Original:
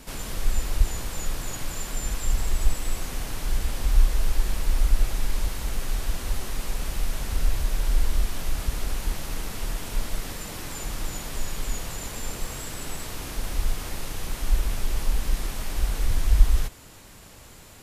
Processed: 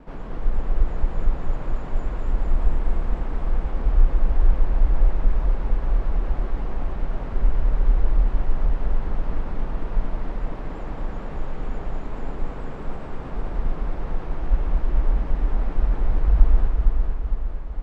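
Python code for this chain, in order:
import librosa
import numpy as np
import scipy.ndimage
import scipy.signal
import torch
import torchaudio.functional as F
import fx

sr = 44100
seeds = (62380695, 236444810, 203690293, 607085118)

p1 = scipy.signal.sosfilt(scipy.signal.butter(2, 1100.0, 'lowpass', fs=sr, output='sos'), x)
p2 = fx.peak_eq(p1, sr, hz=87.0, db=-8.5, octaves=0.55)
p3 = p2 + 10.0 ** (-5.5 / 20.0) * np.pad(p2, (int(225 * sr / 1000.0), 0))[:len(p2)]
p4 = fx.vibrato(p3, sr, rate_hz=9.3, depth_cents=69.0)
p5 = p4 + fx.echo_feedback(p4, sr, ms=457, feedback_pct=52, wet_db=-4.5, dry=0)
y = F.gain(torch.from_numpy(p5), 2.0).numpy()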